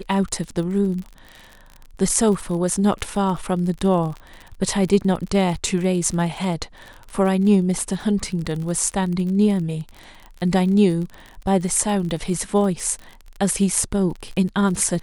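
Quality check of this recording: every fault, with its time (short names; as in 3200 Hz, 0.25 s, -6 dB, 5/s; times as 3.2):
crackle 42/s -29 dBFS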